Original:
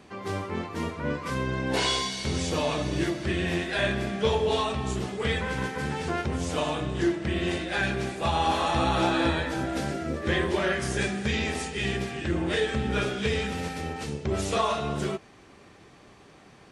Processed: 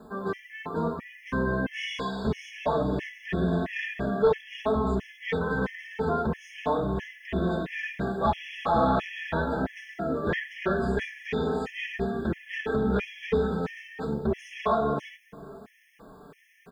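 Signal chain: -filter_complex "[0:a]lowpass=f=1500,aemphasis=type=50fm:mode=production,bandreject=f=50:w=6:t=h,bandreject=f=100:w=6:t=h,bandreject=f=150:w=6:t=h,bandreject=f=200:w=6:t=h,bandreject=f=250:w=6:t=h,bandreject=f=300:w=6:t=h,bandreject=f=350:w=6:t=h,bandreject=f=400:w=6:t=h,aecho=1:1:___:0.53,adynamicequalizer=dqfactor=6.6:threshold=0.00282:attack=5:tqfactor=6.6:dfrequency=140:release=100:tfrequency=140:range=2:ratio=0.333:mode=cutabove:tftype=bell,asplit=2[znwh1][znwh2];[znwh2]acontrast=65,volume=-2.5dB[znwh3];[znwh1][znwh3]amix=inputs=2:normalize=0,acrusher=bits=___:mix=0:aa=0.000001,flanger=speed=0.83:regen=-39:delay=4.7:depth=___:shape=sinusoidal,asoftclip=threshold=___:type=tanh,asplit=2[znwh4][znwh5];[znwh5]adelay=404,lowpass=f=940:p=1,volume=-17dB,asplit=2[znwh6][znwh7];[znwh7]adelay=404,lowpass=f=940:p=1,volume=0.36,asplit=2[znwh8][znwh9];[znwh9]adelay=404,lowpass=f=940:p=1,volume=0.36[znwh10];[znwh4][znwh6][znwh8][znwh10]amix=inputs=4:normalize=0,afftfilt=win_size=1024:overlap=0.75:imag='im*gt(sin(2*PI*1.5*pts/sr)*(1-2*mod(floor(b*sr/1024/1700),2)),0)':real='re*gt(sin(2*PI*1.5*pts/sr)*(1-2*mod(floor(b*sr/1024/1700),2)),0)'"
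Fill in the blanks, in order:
4.5, 9, 2.1, -14.5dB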